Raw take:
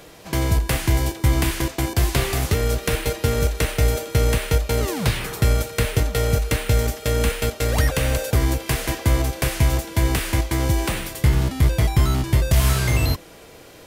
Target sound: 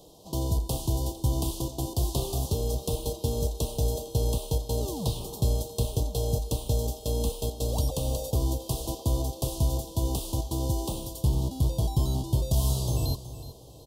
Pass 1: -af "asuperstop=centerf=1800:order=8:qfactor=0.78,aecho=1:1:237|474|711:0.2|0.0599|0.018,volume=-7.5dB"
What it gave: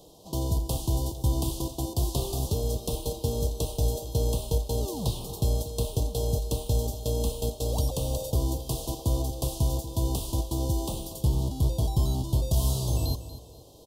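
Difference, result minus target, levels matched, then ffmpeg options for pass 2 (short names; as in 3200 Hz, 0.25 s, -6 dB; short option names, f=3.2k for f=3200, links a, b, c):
echo 0.134 s early
-af "asuperstop=centerf=1800:order=8:qfactor=0.78,aecho=1:1:371|742|1113:0.2|0.0599|0.018,volume=-7.5dB"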